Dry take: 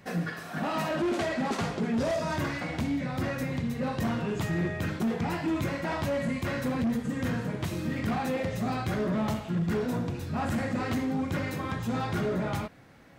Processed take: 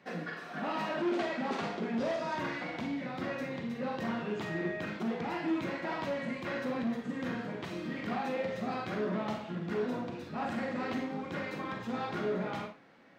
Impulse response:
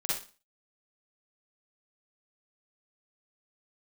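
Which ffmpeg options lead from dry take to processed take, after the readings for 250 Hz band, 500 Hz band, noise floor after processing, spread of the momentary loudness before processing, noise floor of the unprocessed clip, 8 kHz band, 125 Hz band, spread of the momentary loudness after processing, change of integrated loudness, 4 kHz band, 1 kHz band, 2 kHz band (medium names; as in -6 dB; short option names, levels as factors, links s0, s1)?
-5.5 dB, -3.0 dB, -46 dBFS, 4 LU, -41 dBFS, under -10 dB, -12.0 dB, 5 LU, -5.0 dB, -4.5 dB, -3.0 dB, -3.0 dB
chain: -filter_complex "[0:a]acrossover=split=180 5300:gain=0.112 1 0.141[s0][s1][s2];[s0][s1][s2]amix=inputs=3:normalize=0,asplit=2[s3][s4];[1:a]atrim=start_sample=2205,asetrate=52920,aresample=44100[s5];[s4][s5]afir=irnorm=-1:irlink=0,volume=0.473[s6];[s3][s6]amix=inputs=2:normalize=0,volume=0.473"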